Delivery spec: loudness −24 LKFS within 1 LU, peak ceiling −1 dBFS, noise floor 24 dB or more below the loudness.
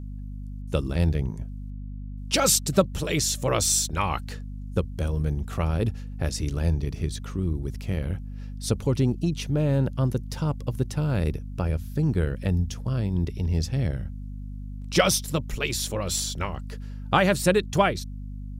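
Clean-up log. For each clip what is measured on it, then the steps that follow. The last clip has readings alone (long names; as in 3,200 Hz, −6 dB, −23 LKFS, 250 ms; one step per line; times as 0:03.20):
mains hum 50 Hz; hum harmonics up to 250 Hz; level of the hum −33 dBFS; integrated loudness −26.0 LKFS; sample peak −4.5 dBFS; target loudness −24.0 LKFS
→ mains-hum notches 50/100/150/200/250 Hz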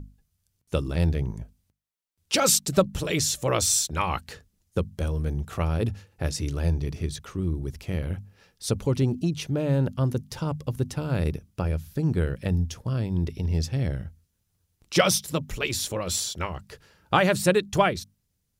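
mains hum none found; integrated loudness −26.5 LKFS; sample peak −5.5 dBFS; target loudness −24.0 LKFS
→ level +2.5 dB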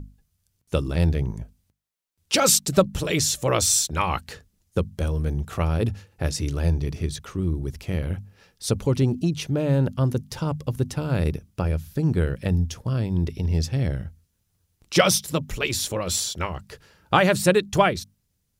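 integrated loudness −24.0 LKFS; sample peak −3.0 dBFS; background noise floor −73 dBFS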